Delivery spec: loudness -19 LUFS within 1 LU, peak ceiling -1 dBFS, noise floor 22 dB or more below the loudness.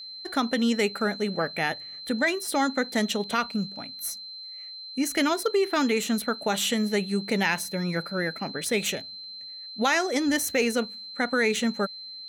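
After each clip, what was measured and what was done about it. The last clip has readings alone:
steady tone 4100 Hz; tone level -38 dBFS; loudness -26.5 LUFS; peak -10.5 dBFS; loudness target -19.0 LUFS
-> notch 4100 Hz, Q 30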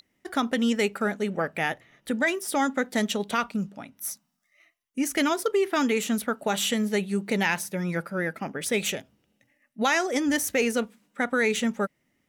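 steady tone none; loudness -27.0 LUFS; peak -11.0 dBFS; loudness target -19.0 LUFS
-> gain +8 dB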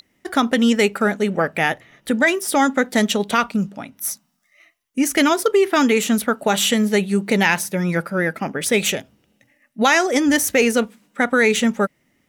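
loudness -19.0 LUFS; peak -3.0 dBFS; noise floor -66 dBFS

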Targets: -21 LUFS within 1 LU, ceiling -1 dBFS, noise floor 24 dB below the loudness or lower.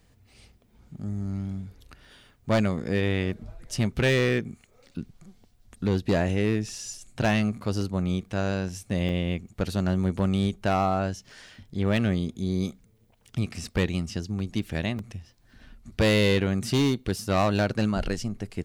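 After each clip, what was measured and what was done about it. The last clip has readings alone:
clipped 1.2%; flat tops at -17.0 dBFS; dropouts 4; longest dropout 2.0 ms; loudness -27.0 LUFS; peak -17.0 dBFS; loudness target -21.0 LUFS
-> clip repair -17 dBFS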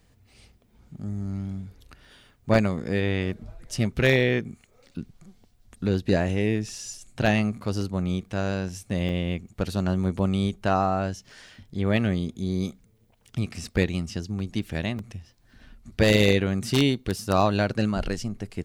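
clipped 0.0%; dropouts 4; longest dropout 2.0 ms
-> interpolate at 6.94/7.81/9.09/14.99, 2 ms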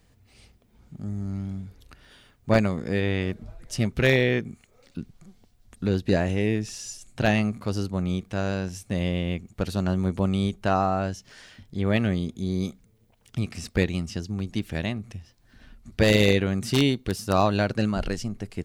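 dropouts 0; loudness -26.0 LUFS; peak -8.0 dBFS; loudness target -21.0 LUFS
-> gain +5 dB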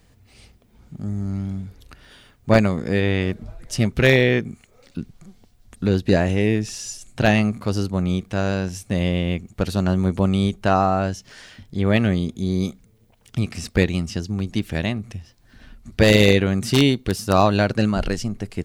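loudness -21.0 LUFS; peak -3.0 dBFS; noise floor -56 dBFS

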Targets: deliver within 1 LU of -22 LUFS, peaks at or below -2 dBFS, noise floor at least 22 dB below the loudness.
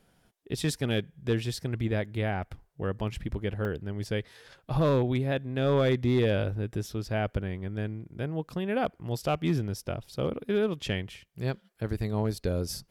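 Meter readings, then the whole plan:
clipped 0.4%; flat tops at -18.0 dBFS; dropouts 1; longest dropout 1.1 ms; loudness -30.5 LUFS; peak -18.0 dBFS; loudness target -22.0 LUFS
-> clip repair -18 dBFS; interpolate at 3.65, 1.1 ms; gain +8.5 dB

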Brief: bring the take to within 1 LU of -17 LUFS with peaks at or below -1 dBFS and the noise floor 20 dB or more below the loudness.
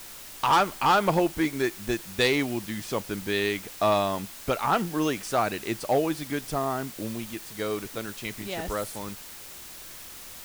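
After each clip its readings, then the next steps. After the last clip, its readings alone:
clipped 0.6%; flat tops at -15.5 dBFS; noise floor -43 dBFS; noise floor target -48 dBFS; loudness -27.5 LUFS; peak -15.5 dBFS; loudness target -17.0 LUFS
-> clip repair -15.5 dBFS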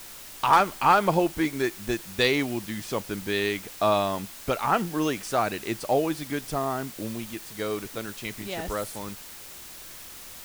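clipped 0.0%; noise floor -43 dBFS; noise floor target -47 dBFS
-> denoiser 6 dB, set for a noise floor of -43 dBFS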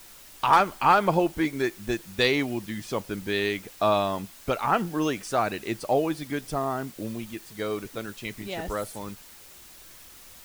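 noise floor -49 dBFS; loudness -27.0 LUFS; peak -6.5 dBFS; loudness target -17.0 LUFS
-> gain +10 dB; limiter -1 dBFS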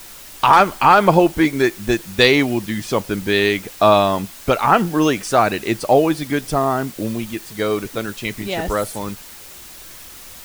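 loudness -17.5 LUFS; peak -1.0 dBFS; noise floor -39 dBFS

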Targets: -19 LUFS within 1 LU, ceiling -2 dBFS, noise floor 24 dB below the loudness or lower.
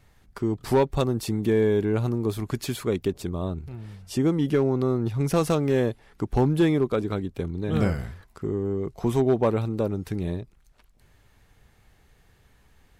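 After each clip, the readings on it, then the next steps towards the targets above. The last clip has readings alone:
clipped 0.3%; flat tops at -13.5 dBFS; loudness -25.5 LUFS; peak -13.5 dBFS; loudness target -19.0 LUFS
-> clip repair -13.5 dBFS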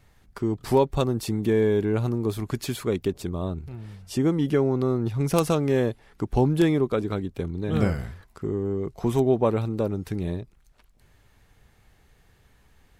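clipped 0.0%; loudness -25.5 LUFS; peak -4.5 dBFS; loudness target -19.0 LUFS
-> gain +6.5 dB; limiter -2 dBFS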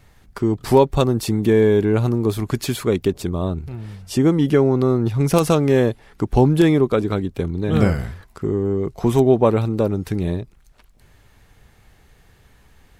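loudness -19.0 LUFS; peak -2.0 dBFS; noise floor -54 dBFS

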